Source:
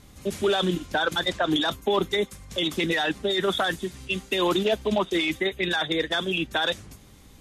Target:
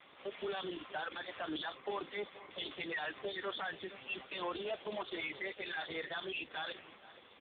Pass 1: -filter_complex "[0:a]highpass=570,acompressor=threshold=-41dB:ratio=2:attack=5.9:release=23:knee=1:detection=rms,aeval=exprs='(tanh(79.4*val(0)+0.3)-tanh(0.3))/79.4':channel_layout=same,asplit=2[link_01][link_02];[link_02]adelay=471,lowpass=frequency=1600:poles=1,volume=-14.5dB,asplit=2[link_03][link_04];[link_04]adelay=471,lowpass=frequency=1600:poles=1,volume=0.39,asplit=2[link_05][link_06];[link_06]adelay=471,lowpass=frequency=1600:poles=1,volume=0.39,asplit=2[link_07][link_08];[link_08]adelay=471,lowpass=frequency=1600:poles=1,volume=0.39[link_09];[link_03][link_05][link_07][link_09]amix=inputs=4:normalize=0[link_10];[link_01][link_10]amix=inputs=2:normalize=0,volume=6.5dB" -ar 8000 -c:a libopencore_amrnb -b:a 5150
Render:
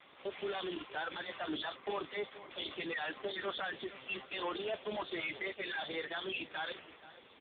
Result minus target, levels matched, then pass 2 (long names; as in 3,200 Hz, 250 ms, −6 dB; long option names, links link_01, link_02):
downward compressor: peak gain reduction −3.5 dB
-filter_complex "[0:a]highpass=570,acompressor=threshold=-48dB:ratio=2:attack=5.9:release=23:knee=1:detection=rms,aeval=exprs='(tanh(79.4*val(0)+0.3)-tanh(0.3))/79.4':channel_layout=same,asplit=2[link_01][link_02];[link_02]adelay=471,lowpass=frequency=1600:poles=1,volume=-14.5dB,asplit=2[link_03][link_04];[link_04]adelay=471,lowpass=frequency=1600:poles=1,volume=0.39,asplit=2[link_05][link_06];[link_06]adelay=471,lowpass=frequency=1600:poles=1,volume=0.39,asplit=2[link_07][link_08];[link_08]adelay=471,lowpass=frequency=1600:poles=1,volume=0.39[link_09];[link_03][link_05][link_07][link_09]amix=inputs=4:normalize=0[link_10];[link_01][link_10]amix=inputs=2:normalize=0,volume=6.5dB" -ar 8000 -c:a libopencore_amrnb -b:a 5150